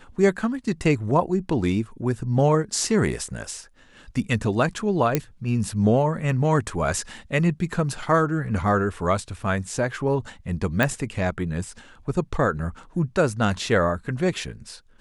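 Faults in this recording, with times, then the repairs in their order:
5.15 s: pop -6 dBFS
10.83 s: pop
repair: de-click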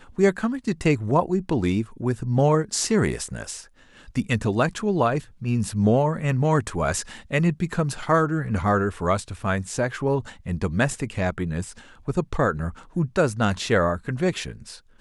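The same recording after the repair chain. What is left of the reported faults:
nothing left

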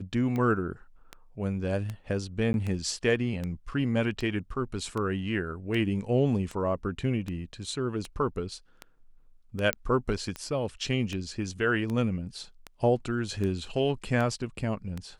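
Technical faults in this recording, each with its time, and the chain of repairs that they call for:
tick 78 rpm -21 dBFS
2.53–2.54 s: dropout 11 ms
9.73 s: pop -11 dBFS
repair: de-click; interpolate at 2.53 s, 11 ms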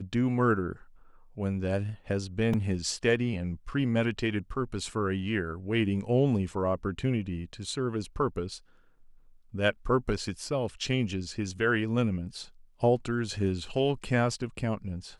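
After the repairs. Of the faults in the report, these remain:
nothing left

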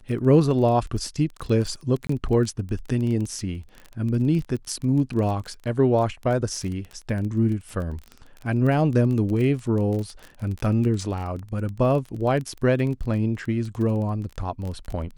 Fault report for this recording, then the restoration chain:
crackle 20 per s -29 dBFS
2.07–2.09 s: dropout 24 ms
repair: de-click; interpolate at 2.07 s, 24 ms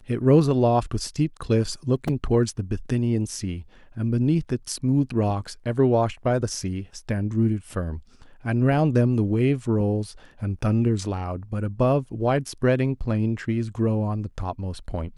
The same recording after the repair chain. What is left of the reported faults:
nothing left

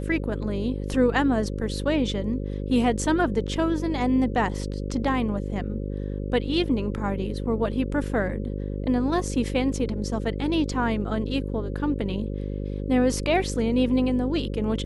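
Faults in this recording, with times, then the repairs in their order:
buzz 50 Hz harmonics 11 -30 dBFS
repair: de-hum 50 Hz, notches 11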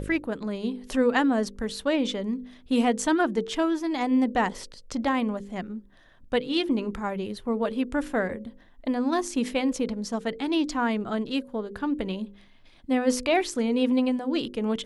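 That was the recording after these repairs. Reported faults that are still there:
nothing left

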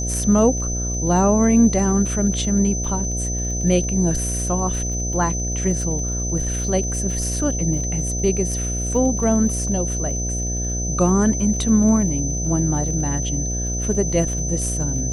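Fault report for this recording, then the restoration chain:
buzz 60 Hz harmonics 12 -25 dBFS
crackle 26 per s -30 dBFS
whine 6.1 kHz -26 dBFS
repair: de-click; band-stop 6.1 kHz, Q 30; de-hum 60 Hz, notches 12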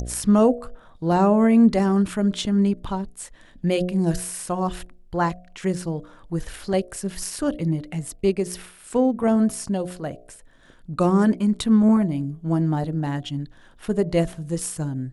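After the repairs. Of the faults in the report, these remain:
nothing left

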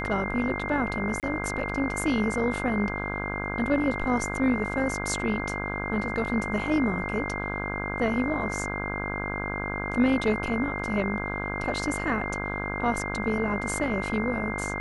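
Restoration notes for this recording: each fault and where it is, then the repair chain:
buzz 50 Hz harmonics 33 -33 dBFS
whine 2.1 kHz -33 dBFS
1.20–1.23 s: dropout 28 ms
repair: de-hum 50 Hz, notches 33; band-stop 2.1 kHz, Q 30; interpolate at 1.20 s, 28 ms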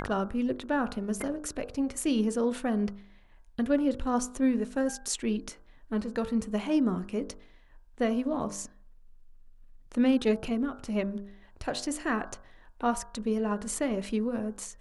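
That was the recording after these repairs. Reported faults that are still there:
nothing left

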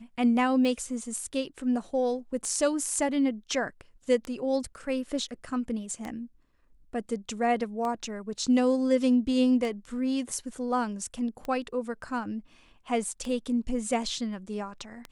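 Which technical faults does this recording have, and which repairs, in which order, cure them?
tick 33 1/3 rpm -21 dBFS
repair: de-click

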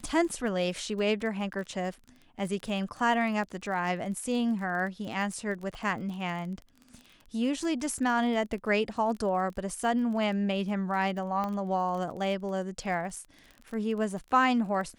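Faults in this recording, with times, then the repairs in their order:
crackle 25 per s -37 dBFS
11.44 s: pop -21 dBFS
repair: de-click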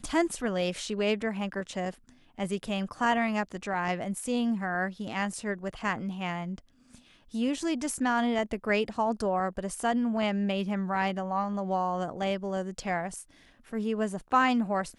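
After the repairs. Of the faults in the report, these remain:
nothing left

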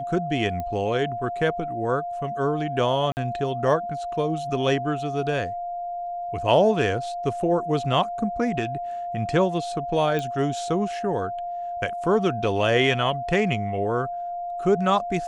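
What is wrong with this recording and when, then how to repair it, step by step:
whine 700 Hz -28 dBFS
0.60 s: pop -19 dBFS
3.12–3.17 s: dropout 49 ms
10.19 s: pop -15 dBFS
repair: de-click; band-stop 700 Hz, Q 30; interpolate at 3.12 s, 49 ms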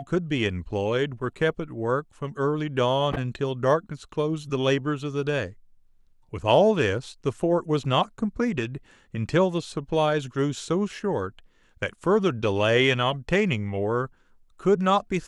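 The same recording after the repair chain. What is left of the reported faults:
nothing left

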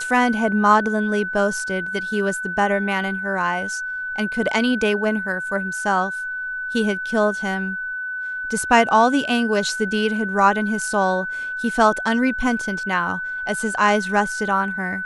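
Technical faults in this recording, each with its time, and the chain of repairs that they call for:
whine 1.5 kHz -25 dBFS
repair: band-stop 1.5 kHz, Q 30

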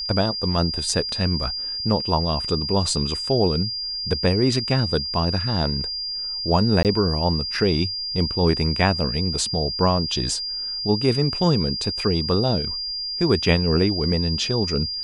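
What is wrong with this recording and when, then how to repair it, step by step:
whine 4.8 kHz -26 dBFS
6.83–6.85 s: dropout 18 ms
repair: band-stop 4.8 kHz, Q 30; interpolate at 6.83 s, 18 ms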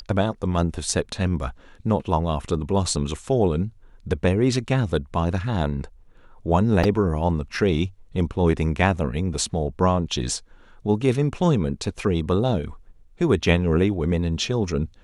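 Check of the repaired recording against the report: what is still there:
nothing left

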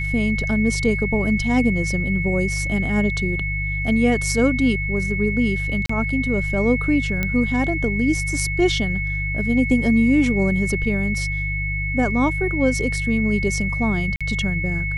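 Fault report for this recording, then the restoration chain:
hum 50 Hz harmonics 3 -26 dBFS
whine 2.2 kHz -25 dBFS
5.86–5.89 s: dropout 34 ms
7.23 s: pop -9 dBFS
14.16–14.21 s: dropout 46 ms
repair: de-click; de-hum 50 Hz, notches 3; band-stop 2.2 kHz, Q 30; interpolate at 5.86 s, 34 ms; interpolate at 14.16 s, 46 ms

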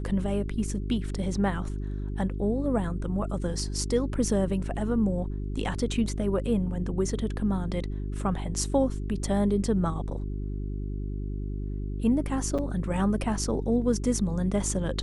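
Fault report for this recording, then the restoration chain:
hum 50 Hz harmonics 8 -32 dBFS
12.58–12.59 s: dropout 5.9 ms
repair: de-hum 50 Hz, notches 8; interpolate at 12.58 s, 5.9 ms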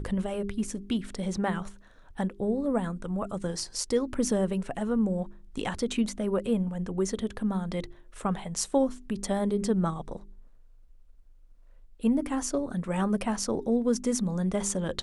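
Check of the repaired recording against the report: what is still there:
nothing left

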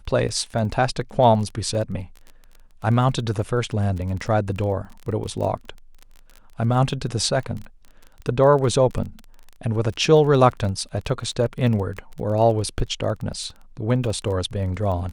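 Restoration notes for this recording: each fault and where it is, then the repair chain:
crackle 22 per s -30 dBFS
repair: de-click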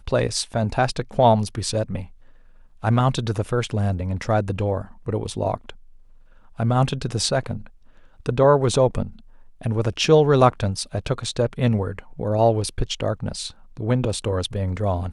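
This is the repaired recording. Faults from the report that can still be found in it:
nothing left

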